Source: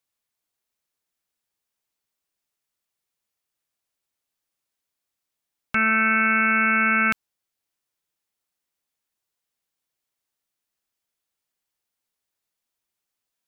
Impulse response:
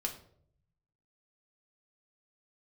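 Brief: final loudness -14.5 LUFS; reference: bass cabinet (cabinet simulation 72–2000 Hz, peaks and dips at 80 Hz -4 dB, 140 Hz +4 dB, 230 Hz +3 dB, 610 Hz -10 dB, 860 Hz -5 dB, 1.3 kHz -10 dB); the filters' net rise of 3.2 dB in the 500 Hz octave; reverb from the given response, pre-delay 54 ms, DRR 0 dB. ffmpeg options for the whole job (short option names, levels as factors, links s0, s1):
-filter_complex "[0:a]equalizer=f=500:t=o:g=8.5,asplit=2[s0][s1];[1:a]atrim=start_sample=2205,adelay=54[s2];[s1][s2]afir=irnorm=-1:irlink=0,volume=0.841[s3];[s0][s3]amix=inputs=2:normalize=0,highpass=f=72:w=0.5412,highpass=f=72:w=1.3066,equalizer=f=80:t=q:w=4:g=-4,equalizer=f=140:t=q:w=4:g=4,equalizer=f=230:t=q:w=4:g=3,equalizer=f=610:t=q:w=4:g=-10,equalizer=f=860:t=q:w=4:g=-5,equalizer=f=1300:t=q:w=4:g=-10,lowpass=f=2000:w=0.5412,lowpass=f=2000:w=1.3066,volume=1.88"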